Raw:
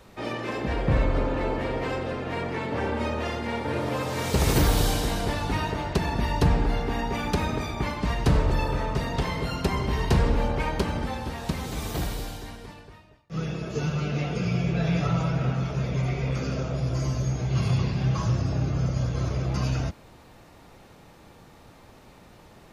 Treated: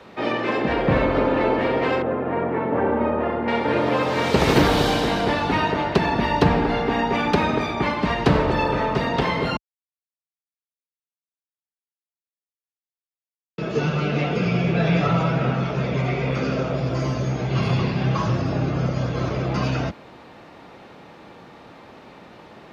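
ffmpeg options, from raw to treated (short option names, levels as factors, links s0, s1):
-filter_complex "[0:a]asettb=1/sr,asplit=3[s0][s1][s2];[s0]atrim=end=2.024[s3];[s1]atrim=start=2.02:end=3.48,asetpts=PTS-STARTPTS,afade=t=in:d=0.004:c=qsin,afade=t=out:st=1.456:d=0.004:c=qsin,lowpass=1300[s4];[s2]atrim=start=3.476[s5];[s3][s4]acrossfade=d=0.004:c1=hsin:c2=qsin[s6];[s6][s5]acrossfade=d=0.004:c1=qsin:c2=hsin,asplit=3[s7][s8][s9];[s7]atrim=end=9.57,asetpts=PTS-STARTPTS,afade=t=out:st=9.566:d=0.004:c=hsin[s10];[s8]atrim=start=9.57:end=13.58,asetpts=PTS-STARTPTS,volume=0[s11];[s9]atrim=start=13.58,asetpts=PTS-STARTPTS,afade=t=in:d=0.004:c=hsin[s12];[s10][s11][s12]concat=n=3:v=0:a=1,highpass=44,acrossover=split=160 4500:gain=0.224 1 0.126[s13][s14][s15];[s13][s14][s15]amix=inputs=3:normalize=0,volume=2.66"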